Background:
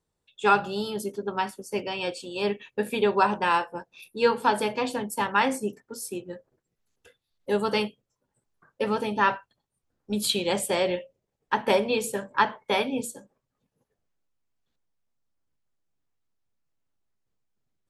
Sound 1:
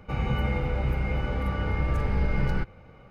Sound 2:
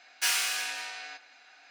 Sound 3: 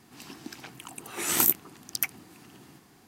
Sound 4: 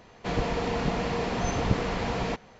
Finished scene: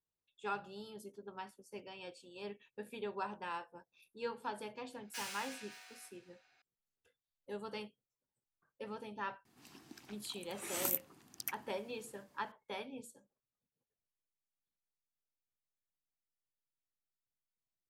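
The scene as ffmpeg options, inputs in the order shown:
-filter_complex "[0:a]volume=0.112[s0];[2:a]aecho=1:1:567:0.133,atrim=end=1.7,asetpts=PTS-STARTPTS,volume=0.133,afade=t=in:d=0.004:c=hsin,afade=t=out:st=1.696:d=0.004:c=hsin,adelay=4920[s1];[3:a]atrim=end=3.07,asetpts=PTS-STARTPTS,volume=0.224,afade=t=in:d=0.004:c=hsin,afade=t=out:st=3.066:d=0.004:c=hsin,adelay=9450[s2];[s0][s1][s2]amix=inputs=3:normalize=0"

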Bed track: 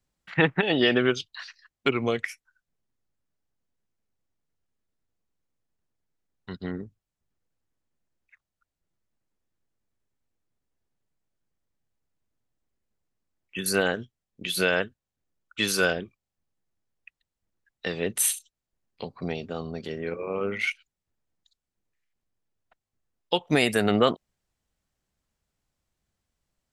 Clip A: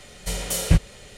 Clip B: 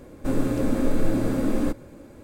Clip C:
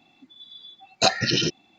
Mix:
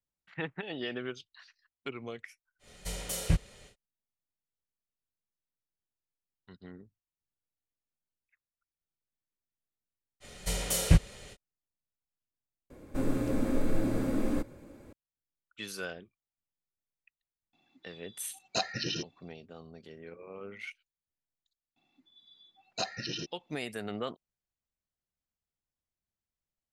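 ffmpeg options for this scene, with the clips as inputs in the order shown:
-filter_complex "[1:a]asplit=2[s0][s1];[3:a]asplit=2[s2][s3];[0:a]volume=0.168[s4];[2:a]equalizer=f=2200:t=o:w=0.3:g=2.5[s5];[s4]asplit=2[s6][s7];[s6]atrim=end=12.704[s8];[s5]atrim=end=2.23,asetpts=PTS-STARTPTS,volume=0.473[s9];[s7]atrim=start=14.926[s10];[s0]atrim=end=1.17,asetpts=PTS-STARTPTS,volume=0.335,afade=t=in:d=0.1,afade=t=out:st=1.07:d=0.1,adelay=2590[s11];[s1]atrim=end=1.17,asetpts=PTS-STARTPTS,volume=0.631,afade=t=in:d=0.05,afade=t=out:st=1.12:d=0.05,adelay=10200[s12];[s2]atrim=end=1.78,asetpts=PTS-STARTPTS,volume=0.251,afade=t=in:d=0.004:c=hsin,afade=t=out:st=1.776:d=0.004:c=hsin,adelay=17530[s13];[s3]atrim=end=1.78,asetpts=PTS-STARTPTS,volume=0.178,afade=t=in:d=0.004:c=hsin,afade=t=out:st=1.776:d=0.004:c=hsin,adelay=21760[s14];[s8][s9]acrossfade=d=0.004:c1=hsin:c2=hsin[s15];[s15][s10]acrossfade=d=0.004:c1=hsin:c2=hsin[s16];[s16][s11][s12][s13][s14]amix=inputs=5:normalize=0"

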